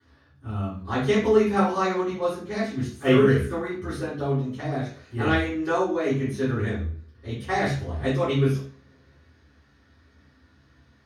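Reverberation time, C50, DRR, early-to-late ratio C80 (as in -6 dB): 0.45 s, 4.0 dB, -12.5 dB, 9.0 dB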